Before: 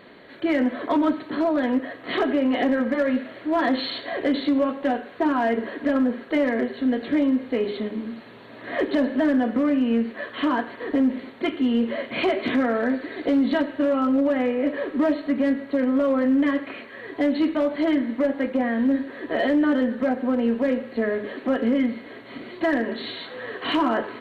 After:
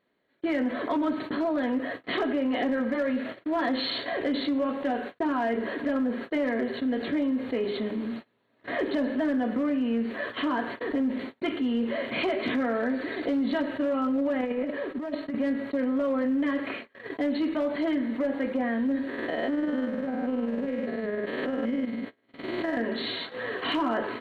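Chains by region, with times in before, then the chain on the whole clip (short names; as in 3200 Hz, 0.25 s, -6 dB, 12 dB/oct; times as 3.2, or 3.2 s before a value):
14.41–15.35 gate -24 dBFS, range -10 dB + negative-ratio compressor -26 dBFS, ratio -0.5
19.09–22.77 stepped spectrum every 0.2 s + AM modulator 20 Hz, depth 45% + backwards sustainer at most 44 dB/s
whole clip: gate -35 dBFS, range -60 dB; fast leveller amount 50%; gain -7 dB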